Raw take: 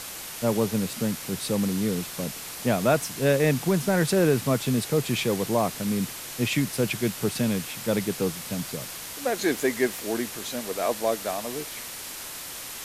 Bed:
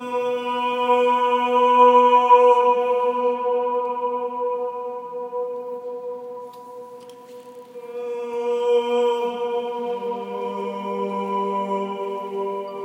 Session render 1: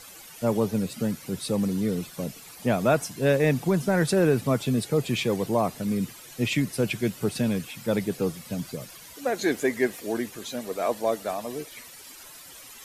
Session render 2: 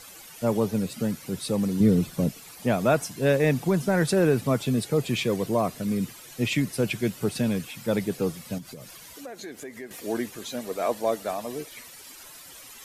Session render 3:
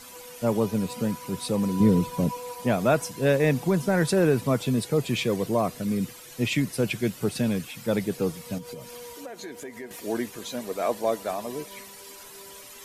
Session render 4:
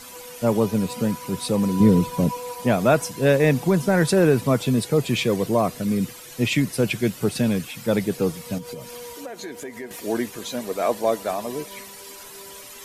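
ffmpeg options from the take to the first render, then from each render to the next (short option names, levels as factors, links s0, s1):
-af "afftdn=nr=13:nf=-38"
-filter_complex "[0:a]asettb=1/sr,asplit=3[s0][s1][s2];[s0]atrim=end=1.804[s3];[s1]atrim=start=1.8:end=2.29,asetpts=PTS-STARTPTS,afade=t=in:d=0.004:c=qsin,afade=t=out:st=0.486:d=0.004:c=qsin,lowshelf=f=380:g=10.5[s4];[s2]atrim=start=2.286[s5];[s3][s4]acrossfade=d=0.004:c1=hsin:c2=qsin[s6];[s6][s5]acrossfade=d=0.004:c1=qsin:c2=hsin,asettb=1/sr,asplit=3[s7][s8][s9];[s7]atrim=end=5.244[s10];[s8]atrim=start=5.24:end=5.89,asetpts=PTS-STARTPTS,afade=t=in:d=0.004:c=qsin,afade=t=out:st=0.646:d=0.004:c=qsin,bandreject=f=840:w=7.3[s11];[s9]atrim=start=5.886[s12];[s10][s11]acrossfade=d=0.004:c1=hsin:c2=qsin[s13];[s13][s12]acrossfade=d=0.004:c1=qsin:c2=hsin,asettb=1/sr,asplit=3[s14][s15][s16];[s14]atrim=end=8.584[s17];[s15]atrim=start=8.58:end=9.91,asetpts=PTS-STARTPTS,afade=t=in:d=0.004:c=qsin,afade=t=out:st=1.326:d=0.004:c=qsin,acompressor=threshold=0.0126:ratio=4:attack=3.2:release=140:knee=1:detection=peak[s18];[s16]atrim=start=9.906[s19];[s17][s18]acrossfade=d=0.004:c1=hsin:c2=qsin[s20];[s20][s19]acrossfade=d=0.004:c1=qsin:c2=hsin"
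-filter_complex "[1:a]volume=0.0631[s0];[0:a][s0]amix=inputs=2:normalize=0"
-af "volume=1.58"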